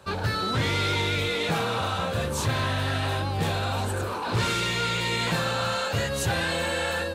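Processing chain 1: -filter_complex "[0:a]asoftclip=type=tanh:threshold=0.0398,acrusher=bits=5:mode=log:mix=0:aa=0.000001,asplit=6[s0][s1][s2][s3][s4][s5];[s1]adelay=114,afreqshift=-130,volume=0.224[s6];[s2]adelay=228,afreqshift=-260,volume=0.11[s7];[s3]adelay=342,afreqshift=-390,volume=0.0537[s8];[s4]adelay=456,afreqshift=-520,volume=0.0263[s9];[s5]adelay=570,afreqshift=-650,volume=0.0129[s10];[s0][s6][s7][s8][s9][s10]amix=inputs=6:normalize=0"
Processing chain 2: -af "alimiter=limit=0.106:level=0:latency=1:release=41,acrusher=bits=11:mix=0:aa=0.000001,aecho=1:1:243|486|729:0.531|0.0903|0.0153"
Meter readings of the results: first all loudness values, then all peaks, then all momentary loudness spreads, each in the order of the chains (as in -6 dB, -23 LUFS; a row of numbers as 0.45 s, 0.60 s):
-30.5 LUFS, -26.5 LUFS; -23.0 dBFS, -16.0 dBFS; 2 LU, 3 LU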